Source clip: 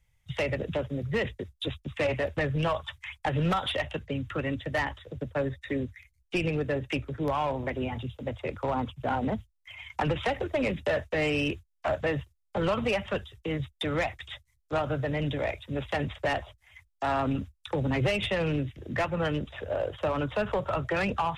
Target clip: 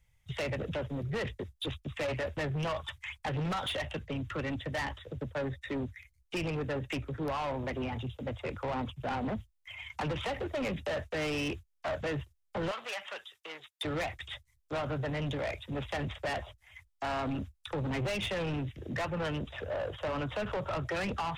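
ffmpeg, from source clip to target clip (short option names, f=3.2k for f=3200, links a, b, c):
-filter_complex "[0:a]asoftclip=type=tanh:threshold=-30dB,asettb=1/sr,asplit=3[a][b][c];[a]atrim=end=12.714[d];[b]atrim=start=12.71:end=13.85,asetpts=PTS-STARTPTS,afade=t=in:d=0.004:c=qsin,afade=t=out:st=1.136:d=0.004:c=qsin,highpass=870[e];[c]atrim=start=13.846[f];[d][e]acrossfade=d=0.004:c1=hsin:c2=qsin[g];[g][f]acrossfade=d=0.004:c1=qsin:c2=hsin"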